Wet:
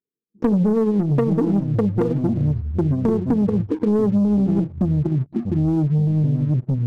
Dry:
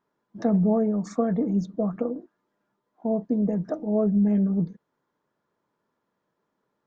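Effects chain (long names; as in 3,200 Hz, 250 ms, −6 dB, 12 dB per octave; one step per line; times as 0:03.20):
linear-phase brick-wall band-stop 500–5,200 Hz
parametric band 2,000 Hz +13.5 dB 2.2 octaves
transient designer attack +3 dB, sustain −9 dB
noise gate with hold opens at −29 dBFS
auto-filter low-pass saw down 0.62 Hz 780–1,700 Hz
leveller curve on the samples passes 2
delay with pitch and tempo change per echo 401 ms, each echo −5 semitones, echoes 3, each echo −6 dB
downward compressor 6 to 1, threshold −25 dBFS, peak gain reduction 13 dB
hard clipping −20.5 dBFS, distortion −27 dB
level +8.5 dB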